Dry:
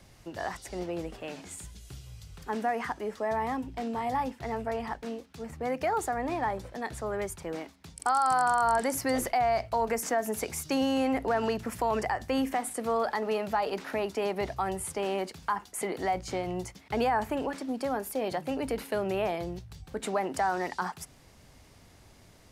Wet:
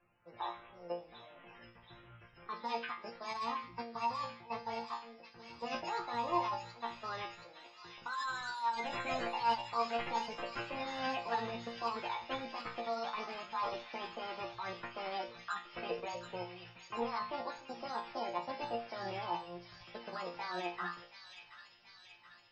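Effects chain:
low-shelf EQ 310 Hz −9.5 dB
sample-rate reduction 4,600 Hz, jitter 20%
output level in coarse steps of 18 dB
spectral peaks only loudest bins 64
resonators tuned to a chord A#2 fifth, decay 0.37 s
formants moved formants +4 semitones
delay with a high-pass on its return 728 ms, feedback 62%, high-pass 2,600 Hz, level −5 dB
level +13 dB

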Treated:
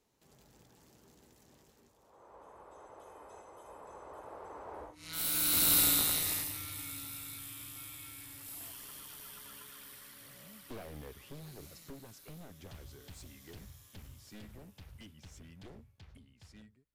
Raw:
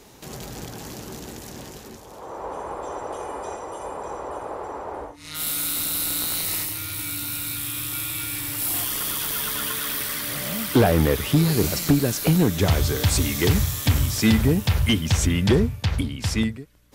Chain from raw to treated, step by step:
wavefolder on the positive side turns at −17.5 dBFS
source passing by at 0:05.75, 14 m/s, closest 3.4 metres

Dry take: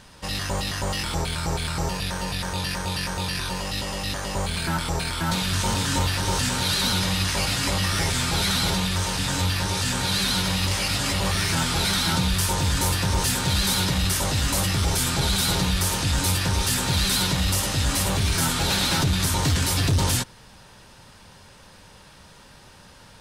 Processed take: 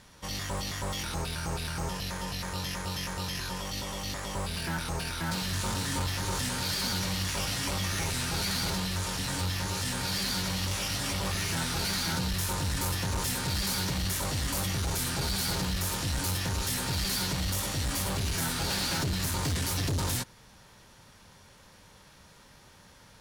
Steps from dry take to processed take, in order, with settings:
asymmetric clip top −22 dBFS, bottom −18 dBFS
formants moved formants +2 semitones
level −6.5 dB

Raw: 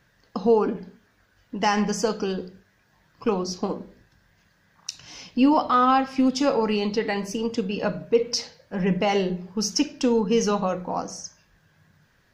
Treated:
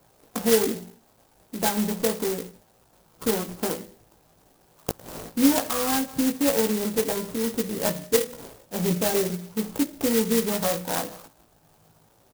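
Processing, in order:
treble cut that deepens with the level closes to 630 Hz, closed at −17.5 dBFS
RIAA equalisation recording
treble cut that deepens with the level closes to 1,800 Hz, closed at −26.5 dBFS
low-shelf EQ 210 Hz +10.5 dB
sample-rate reduction 2,400 Hz, jitter 0%
double-tracking delay 18 ms −4.5 dB
converter with an unsteady clock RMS 0.13 ms

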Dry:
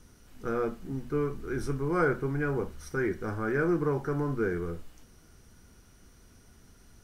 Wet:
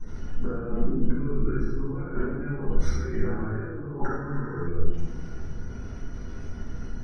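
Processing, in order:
gate on every frequency bin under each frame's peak −30 dB strong
0:01.18–0:03.69: notch filter 450 Hz, Q 12
compressor whose output falls as the input rises −41 dBFS, ratio −1
high-frequency loss of the air 160 metres
convolution reverb RT60 1.1 s, pre-delay 3 ms, DRR −11.5 dB
0:04.29–0:04.65: healed spectral selection 770–5,700 Hz before
level −6 dB

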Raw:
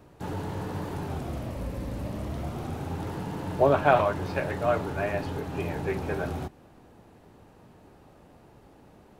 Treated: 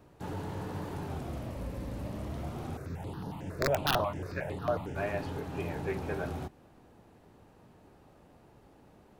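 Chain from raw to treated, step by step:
wrap-around overflow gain 11 dB
0:02.77–0:04.96: step-sequenced phaser 11 Hz 850–7,800 Hz
level −4.5 dB

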